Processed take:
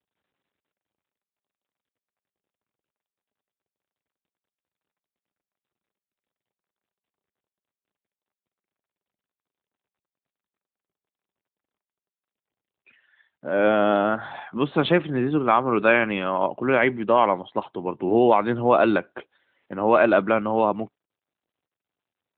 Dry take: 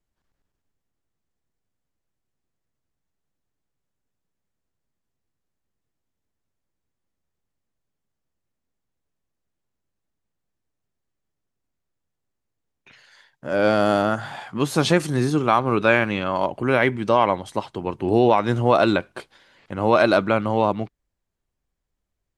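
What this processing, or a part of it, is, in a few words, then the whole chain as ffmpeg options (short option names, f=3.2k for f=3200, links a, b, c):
mobile call with aggressive noise cancelling: -af "highpass=180,afftdn=nr=12:nf=-45" -ar 8000 -c:a libopencore_amrnb -b:a 12200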